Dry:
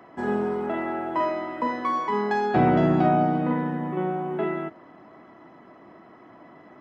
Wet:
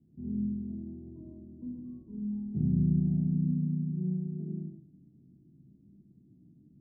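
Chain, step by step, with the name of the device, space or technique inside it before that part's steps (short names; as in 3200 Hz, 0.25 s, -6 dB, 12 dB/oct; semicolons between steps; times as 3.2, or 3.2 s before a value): club heard from the street (limiter -15.5 dBFS, peak gain reduction 6 dB; LPF 180 Hz 24 dB/oct; reverb RT60 0.55 s, pre-delay 33 ms, DRR 0.5 dB)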